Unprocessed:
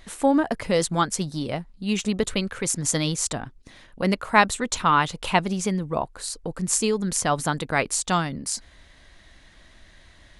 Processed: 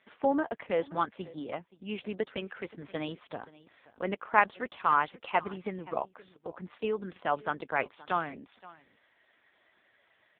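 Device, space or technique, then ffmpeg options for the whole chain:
satellite phone: -af "highpass=330,lowpass=3200,aecho=1:1:525:0.0944,volume=0.562" -ar 8000 -c:a libopencore_amrnb -b:a 5150

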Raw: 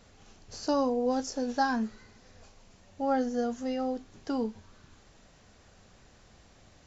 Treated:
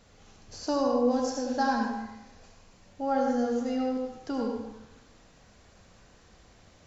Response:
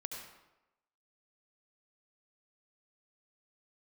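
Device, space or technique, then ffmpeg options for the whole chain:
bathroom: -filter_complex "[1:a]atrim=start_sample=2205[s0];[0:a][s0]afir=irnorm=-1:irlink=0,volume=1.33"

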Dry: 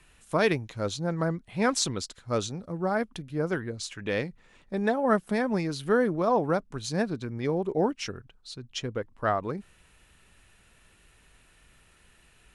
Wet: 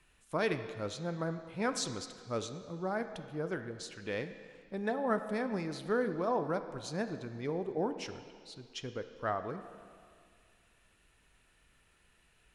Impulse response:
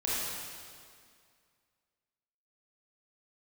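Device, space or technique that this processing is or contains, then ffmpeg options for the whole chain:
filtered reverb send: -filter_complex "[0:a]asplit=2[s0][s1];[s1]highpass=200,lowpass=5300[s2];[1:a]atrim=start_sample=2205[s3];[s2][s3]afir=irnorm=-1:irlink=0,volume=0.168[s4];[s0][s4]amix=inputs=2:normalize=0,volume=0.355"

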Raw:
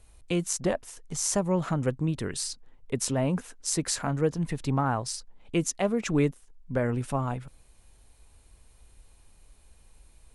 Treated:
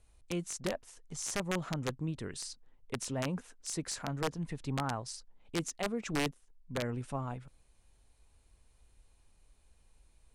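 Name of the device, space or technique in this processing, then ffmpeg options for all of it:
overflowing digital effects unit: -af "aeval=exprs='(mod(6.31*val(0)+1,2)-1)/6.31':c=same,lowpass=9800,volume=0.376"

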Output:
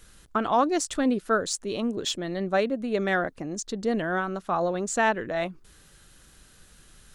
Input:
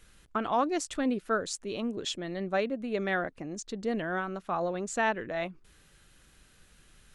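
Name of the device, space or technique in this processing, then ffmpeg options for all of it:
exciter from parts: -filter_complex "[0:a]asplit=2[s0][s1];[s1]highpass=f=2200:w=0.5412,highpass=f=2200:w=1.3066,asoftclip=type=tanh:threshold=0.02,volume=0.447[s2];[s0][s2]amix=inputs=2:normalize=0,volume=1.78"

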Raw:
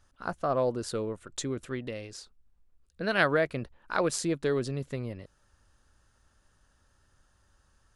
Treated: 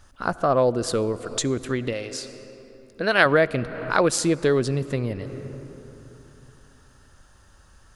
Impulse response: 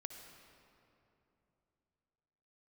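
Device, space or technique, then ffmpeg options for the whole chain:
ducked reverb: -filter_complex "[0:a]asplit=3[s0][s1][s2];[1:a]atrim=start_sample=2205[s3];[s1][s3]afir=irnorm=-1:irlink=0[s4];[s2]apad=whole_len=350977[s5];[s4][s5]sidechaincompress=threshold=0.00794:ratio=5:attack=46:release=275,volume=1.58[s6];[s0][s6]amix=inputs=2:normalize=0,asettb=1/sr,asplit=3[s7][s8][s9];[s7]atrim=end=1.934[s10];[s8]atrim=start=1.93:end=3.26,asetpts=PTS-STARTPTS,afade=t=in:d=0.004:c=qsin,afade=t=out:st=1.326:d=0.004:c=qsin,bass=f=250:g=-8,treble=f=4000:g=0[s11];[s9]atrim=start=3.256[s12];[s10][s11]acrossfade=d=0.004:c1=hsin:c2=qsin[s13];[s13][s12]acrossfade=d=0.004:c1=qsin:c2=hsin,volume=2.11"

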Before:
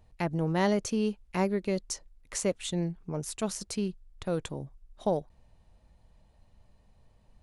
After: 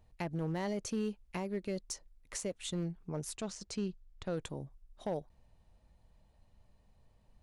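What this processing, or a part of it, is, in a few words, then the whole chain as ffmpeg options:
limiter into clipper: -filter_complex "[0:a]alimiter=limit=0.0794:level=0:latency=1:release=183,asoftclip=type=hard:threshold=0.0596,asplit=3[s0][s1][s2];[s0]afade=t=out:st=3.35:d=0.02[s3];[s1]lowpass=f=7500:w=0.5412,lowpass=f=7500:w=1.3066,afade=t=in:st=3.35:d=0.02,afade=t=out:st=4.36:d=0.02[s4];[s2]afade=t=in:st=4.36:d=0.02[s5];[s3][s4][s5]amix=inputs=3:normalize=0,volume=0.596"

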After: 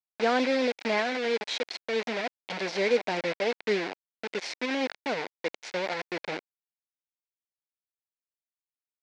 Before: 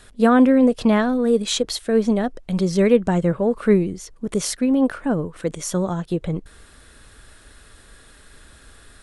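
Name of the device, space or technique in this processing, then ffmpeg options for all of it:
hand-held game console: -filter_complex "[0:a]asettb=1/sr,asplit=3[s0][s1][s2];[s0]atrim=end=1.284[s3];[s1]atrim=start=1.28:end=2.71,asetpts=PTS-STARTPTS,afade=t=in:d=0.004:c=qsin,afade=t=out:st=1.426:d=0.004:c=qsin,equalizer=f=1300:w=0.38:g=-4[s4];[s2]atrim=start=2.706[s5];[s3][s4]acrossfade=d=0.004:c1=hsin:c2=qsin[s6];[s6][s5]acrossfade=d=0.004:c1=qsin:c2=hsin,acrusher=bits=3:mix=0:aa=0.000001,highpass=490,equalizer=f=1200:t=q:w=4:g=-9,equalizer=f=2200:t=q:w=4:g=5,equalizer=f=3100:t=q:w=4:g=-4,lowpass=f=4700:w=0.5412,lowpass=f=4700:w=1.3066,volume=0.596"

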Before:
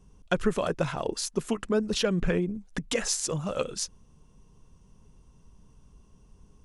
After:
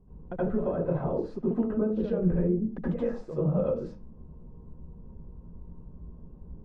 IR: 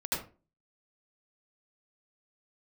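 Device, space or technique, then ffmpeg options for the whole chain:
television next door: -filter_complex "[0:a]acompressor=threshold=0.0224:ratio=6,lowpass=600[s0];[1:a]atrim=start_sample=2205[s1];[s0][s1]afir=irnorm=-1:irlink=0,lowshelf=f=340:g=-3,volume=1.88"

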